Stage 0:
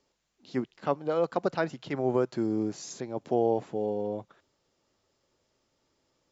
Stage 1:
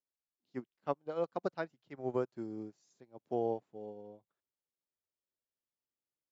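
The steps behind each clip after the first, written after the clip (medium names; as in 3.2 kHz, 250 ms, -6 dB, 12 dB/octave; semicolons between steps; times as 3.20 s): upward expansion 2.5:1, over -39 dBFS; trim -5.5 dB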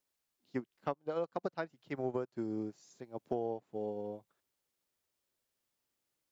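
compression 6:1, threshold -43 dBFS, peak gain reduction 15 dB; trim +10 dB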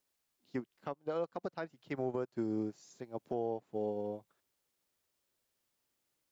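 peak limiter -28.5 dBFS, peak gain reduction 8.5 dB; trim +2.5 dB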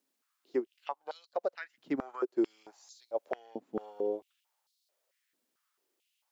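step-sequenced high-pass 4.5 Hz 250–4200 Hz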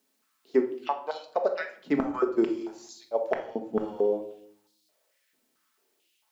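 simulated room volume 870 m³, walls furnished, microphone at 1.5 m; trim +7 dB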